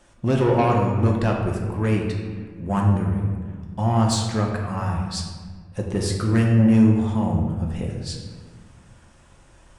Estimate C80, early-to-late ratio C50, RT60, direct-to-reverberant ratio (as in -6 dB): 5.0 dB, 3.0 dB, 1.6 s, -0.5 dB